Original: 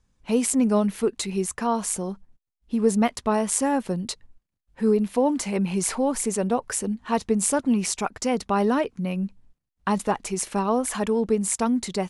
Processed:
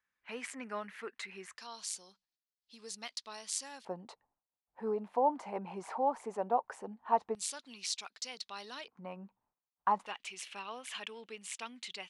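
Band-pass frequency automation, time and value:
band-pass, Q 2.9
1800 Hz
from 1.57 s 4500 Hz
from 3.85 s 830 Hz
from 7.35 s 4100 Hz
from 8.88 s 930 Hz
from 10.06 s 2900 Hz

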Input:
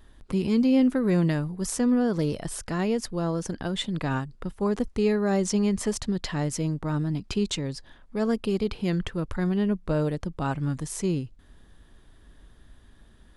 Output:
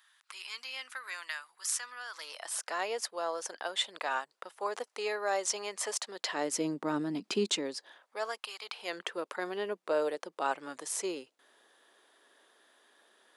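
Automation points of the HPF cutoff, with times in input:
HPF 24 dB/oct
2.13 s 1200 Hz
2.63 s 570 Hz
6.07 s 570 Hz
6.67 s 260 Hz
7.5 s 260 Hz
8.57 s 1000 Hz
9.03 s 430 Hz

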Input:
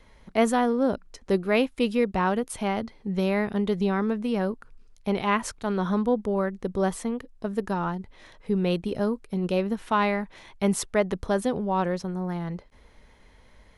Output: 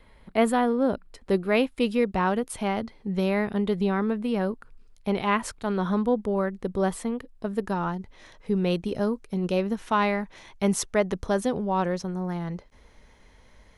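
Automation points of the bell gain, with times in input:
bell 6100 Hz 0.35 oct
0.89 s -14.5 dB
1.85 s -2.5 dB
3.24 s -2.5 dB
4.11 s -13.5 dB
4.51 s -4 dB
7.58 s -4 dB
7.99 s +4.5 dB

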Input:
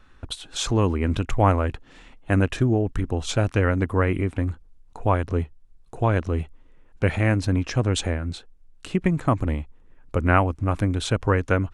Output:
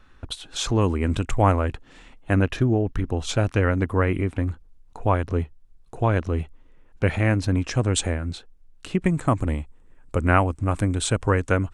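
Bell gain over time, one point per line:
bell 8200 Hz 0.43 oct
-1.5 dB
from 0.81 s +9 dB
from 1.51 s +3 dB
from 2.33 s -8.5 dB
from 3.08 s -0.5 dB
from 7.56 s +8.5 dB
from 8.31 s -0.5 dB
from 9.02 s +11.5 dB

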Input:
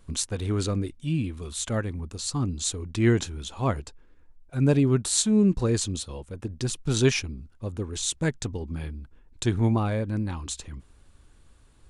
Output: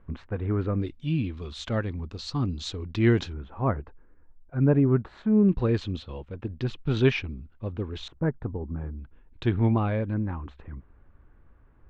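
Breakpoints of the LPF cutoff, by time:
LPF 24 dB/oct
2000 Hz
from 0.8 s 4500 Hz
from 3.33 s 1800 Hz
from 5.49 s 3300 Hz
from 8.08 s 1400 Hz
from 8.99 s 3100 Hz
from 10.14 s 1900 Hz

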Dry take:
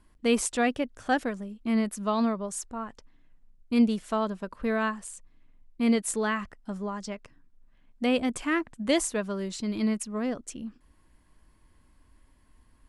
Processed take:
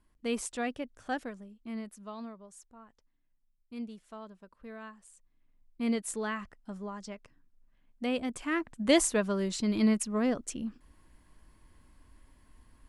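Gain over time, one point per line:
1.14 s -8.5 dB
2.38 s -18 dB
4.9 s -18 dB
5.81 s -6.5 dB
8.37 s -6.5 dB
8.96 s +1.5 dB

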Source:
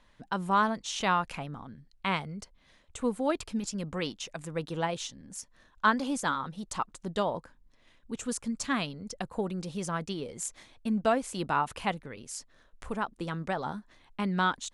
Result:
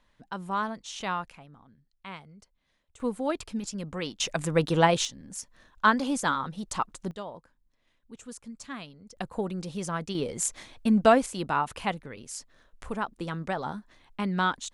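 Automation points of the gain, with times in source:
-4.5 dB
from 1.3 s -12 dB
from 3 s -0.5 dB
from 4.2 s +10 dB
from 5.05 s +3 dB
from 7.11 s -9.5 dB
from 9.17 s +1 dB
from 10.15 s +7 dB
from 11.26 s +1 dB

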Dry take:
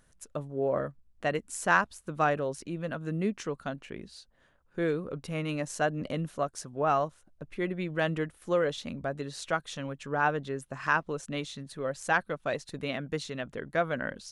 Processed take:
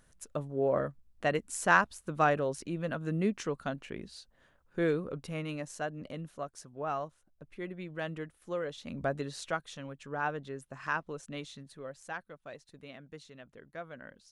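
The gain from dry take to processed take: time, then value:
4.94 s 0 dB
5.89 s -8.5 dB
8.79 s -8.5 dB
9.03 s +2 dB
9.74 s -6.5 dB
11.57 s -6.5 dB
12.22 s -15 dB

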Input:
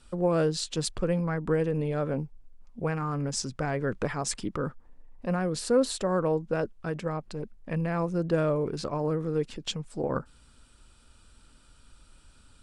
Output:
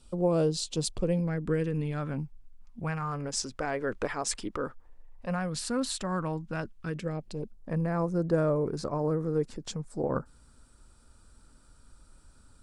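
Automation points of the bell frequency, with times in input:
bell -12.5 dB 0.95 oct
0.92 s 1700 Hz
1.98 s 490 Hz
2.8 s 490 Hz
3.35 s 150 Hz
4.62 s 150 Hz
5.7 s 470 Hz
6.63 s 470 Hz
7.77 s 2900 Hz

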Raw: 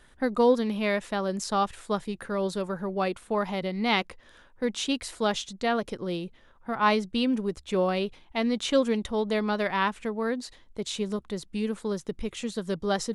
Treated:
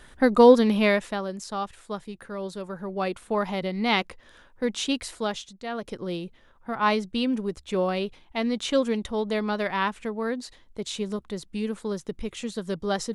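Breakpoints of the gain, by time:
0.82 s +7 dB
1.37 s -5 dB
2.57 s -5 dB
3.22 s +1.5 dB
5.03 s +1.5 dB
5.64 s -8.5 dB
5.95 s 0 dB

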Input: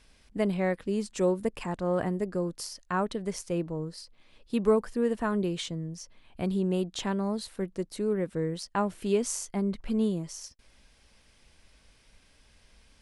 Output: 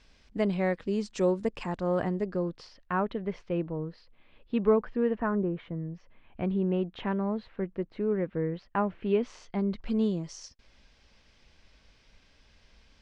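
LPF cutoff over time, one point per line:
LPF 24 dB/oct
2 s 6500 Hz
2.86 s 3100 Hz
5.07 s 3100 Hz
5.44 s 1500 Hz
5.95 s 2700 Hz
9.03 s 2700 Hz
9.92 s 6000 Hz

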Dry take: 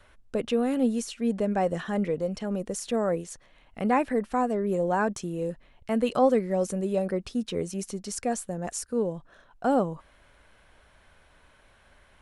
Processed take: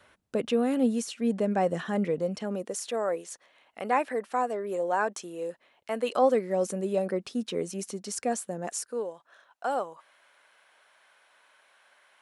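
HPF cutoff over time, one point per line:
2.29 s 130 Hz
2.84 s 450 Hz
5.96 s 450 Hz
6.68 s 210 Hz
8.61 s 210 Hz
9.14 s 710 Hz

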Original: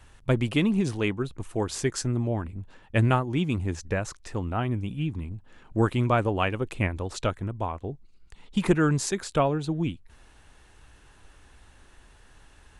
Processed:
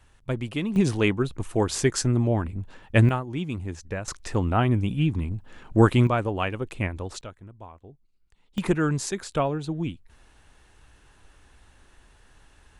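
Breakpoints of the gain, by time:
-5 dB
from 0.76 s +4.5 dB
from 3.09 s -4 dB
from 4.08 s +6 dB
from 6.07 s -1.5 dB
from 7.21 s -13.5 dB
from 8.58 s -1.5 dB

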